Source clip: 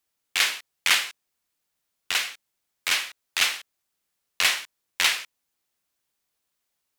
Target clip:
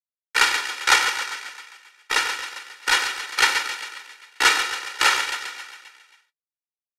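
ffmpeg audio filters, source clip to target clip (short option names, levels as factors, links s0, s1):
-filter_complex "[0:a]acrusher=bits=7:mix=0:aa=0.000001,agate=range=0.224:threshold=0.0316:ratio=16:detection=peak,asplit=9[s0][s1][s2][s3][s4][s5][s6][s7][s8];[s1]adelay=134,afreqshift=49,volume=0.422[s9];[s2]adelay=268,afreqshift=98,volume=0.248[s10];[s3]adelay=402,afreqshift=147,volume=0.146[s11];[s4]adelay=536,afreqshift=196,volume=0.0871[s12];[s5]adelay=670,afreqshift=245,volume=0.0513[s13];[s6]adelay=804,afreqshift=294,volume=0.0302[s14];[s7]adelay=938,afreqshift=343,volume=0.0178[s15];[s8]adelay=1072,afreqshift=392,volume=0.0105[s16];[s0][s9][s10][s11][s12][s13][s14][s15][s16]amix=inputs=9:normalize=0,adynamicequalizer=threshold=0.00891:dfrequency=8100:dqfactor=0.96:tfrequency=8100:tqfactor=0.96:attack=5:release=100:ratio=0.375:range=1.5:mode=boostabove:tftype=bell,asetrate=30296,aresample=44100,atempo=1.45565,aecho=1:1:2.1:0.97,afreqshift=-62,volume=1.12"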